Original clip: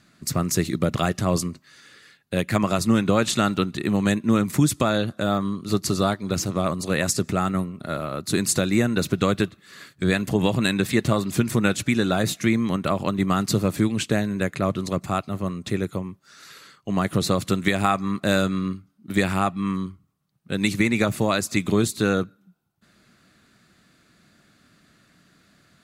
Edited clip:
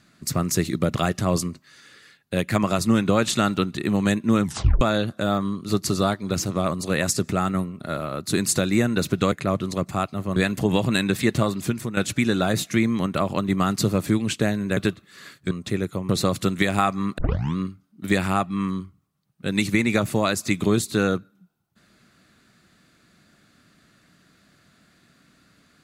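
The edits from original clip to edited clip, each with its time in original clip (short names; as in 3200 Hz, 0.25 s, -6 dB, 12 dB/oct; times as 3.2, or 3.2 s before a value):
4.43 tape stop 0.38 s
9.32–10.06 swap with 14.47–15.51
10.97–11.67 fade out equal-power, to -12.5 dB
16.09–17.15 cut
18.24 tape start 0.38 s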